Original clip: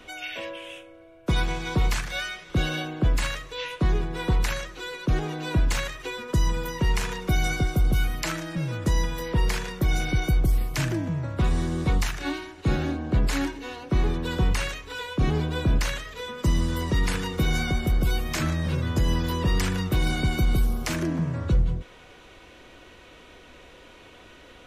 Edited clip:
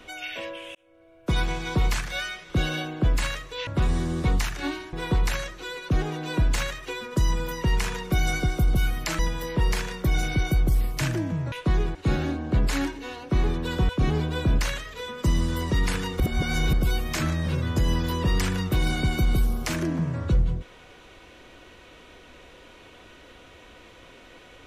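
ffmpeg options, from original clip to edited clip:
-filter_complex "[0:a]asplit=10[a][b][c][d][e][f][g][h][i][j];[a]atrim=end=0.75,asetpts=PTS-STARTPTS,afade=t=out:st=0.746:d=0.004:c=hsin[k];[b]atrim=start=0.75:end=3.672,asetpts=PTS-STARTPTS,afade=t=in:d=0.77:c=qsin[l];[c]atrim=start=11.288:end=12.552[m];[d]atrim=start=4.098:end=8.362[n];[e]atrim=start=8.958:end=11.292[o];[f]atrim=start=3.668:end=4.102[p];[g]atrim=start=12.548:end=14.492[q];[h]atrim=start=15.088:end=17.402[r];[i]atrim=start=17.398:end=17.932,asetpts=PTS-STARTPTS,areverse[s];[j]atrim=start=17.928[t];[k][l]concat=n=2:v=0:a=1[u];[u][m]acrossfade=d=0.004:c1=hsin:c2=hsin[v];[v][n]acrossfade=d=0.004:c1=hsin:c2=hsin[w];[w][o]acrossfade=d=0.004:c1=hsin:c2=hsin[x];[x][p]acrossfade=d=0.004:c1=hsin:c2=hsin[y];[y][q]acrossfade=d=0.004:c1=hsin:c2=hsin[z];[z][r]acrossfade=d=0.004:c1=hsin:c2=hsin[aa];[aa][s]acrossfade=d=0.004:c1=hsin:c2=hsin[ab];[ab][t]acrossfade=d=0.004:c1=hsin:c2=hsin"

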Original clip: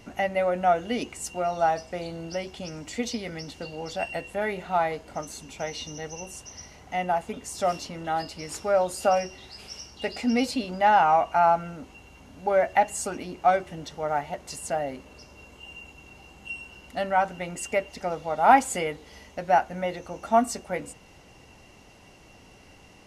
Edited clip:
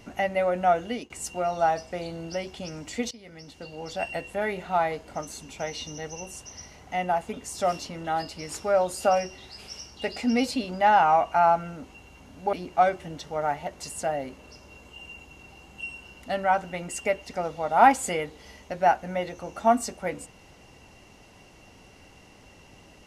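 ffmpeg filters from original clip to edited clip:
-filter_complex "[0:a]asplit=4[a][b][c][d];[a]atrim=end=1.1,asetpts=PTS-STARTPTS,afade=t=out:st=0.75:d=0.35:c=qsin:silence=0.0630957[e];[b]atrim=start=1.1:end=3.11,asetpts=PTS-STARTPTS,afade=t=in:d=0.004:c=hsin:silence=0.0630957,afade=t=out:st=2.006:d=0.004:c=hsin:silence=0.112202[f];[c]atrim=start=3.11:end=12.532,asetpts=PTS-STARTPTS,afade=t=in:d=0.95:silence=0.112202[g];[d]atrim=start=13.198[h];[e][f][g]concat=n=3:v=0:a=1[i];[i][h]acrossfade=d=0.004:c1=hsin:c2=hsin"

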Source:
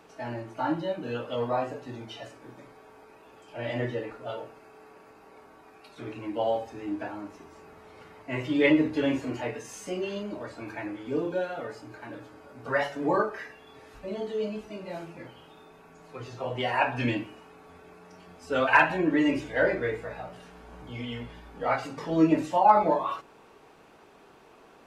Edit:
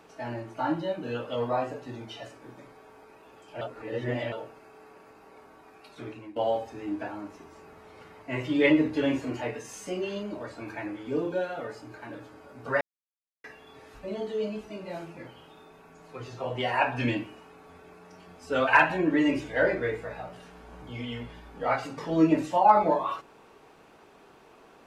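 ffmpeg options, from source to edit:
-filter_complex "[0:a]asplit=6[a][b][c][d][e][f];[a]atrim=end=3.612[g];[b]atrim=start=3.608:end=4.322,asetpts=PTS-STARTPTS,areverse[h];[c]atrim=start=4.318:end=6.36,asetpts=PTS-STARTPTS,afade=t=out:st=1.692:d=0.35:silence=0.177828[i];[d]atrim=start=6.36:end=12.81,asetpts=PTS-STARTPTS,afade=t=in:d=0.004:c=hsin:silence=0.177828,afade=t=out:st=6.446:d=0.004:c=hsin[j];[e]atrim=start=12.81:end=13.44,asetpts=PTS-STARTPTS,volume=0[k];[f]atrim=start=13.44,asetpts=PTS-STARTPTS,afade=t=in:d=0.004:c=hsin[l];[g][h]acrossfade=d=0.004:c1=hsin:c2=hsin[m];[i][j][k][l]concat=n=4:v=0:a=1[n];[m][n]acrossfade=d=0.004:c1=hsin:c2=hsin"

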